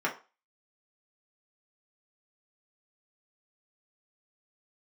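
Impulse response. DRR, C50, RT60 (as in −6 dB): −2.5 dB, 12.5 dB, 0.30 s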